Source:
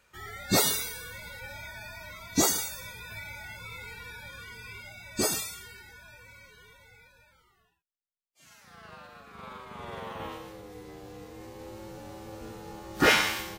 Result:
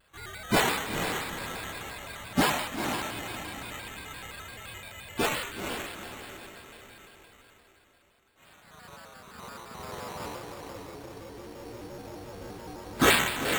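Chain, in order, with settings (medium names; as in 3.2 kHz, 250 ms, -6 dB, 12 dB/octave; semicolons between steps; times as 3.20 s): echo that smears into a reverb 460 ms, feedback 45%, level -6 dB; careless resampling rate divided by 8×, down none, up hold; vibrato with a chosen wave square 5.8 Hz, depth 160 cents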